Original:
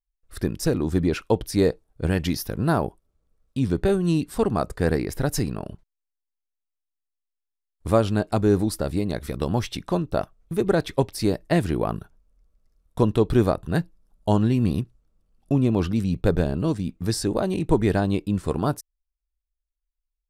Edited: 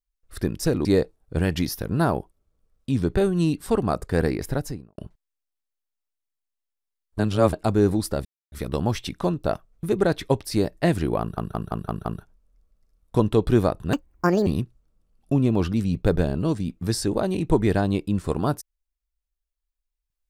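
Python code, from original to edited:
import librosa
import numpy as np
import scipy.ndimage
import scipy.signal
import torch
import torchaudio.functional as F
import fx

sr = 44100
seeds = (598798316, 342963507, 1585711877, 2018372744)

y = fx.studio_fade_out(x, sr, start_s=5.09, length_s=0.57)
y = fx.edit(y, sr, fx.cut(start_s=0.85, length_s=0.68),
    fx.reverse_span(start_s=7.87, length_s=0.34),
    fx.silence(start_s=8.93, length_s=0.27),
    fx.stutter(start_s=11.88, slice_s=0.17, count=6),
    fx.speed_span(start_s=13.76, length_s=0.9, speed=1.68), tone=tone)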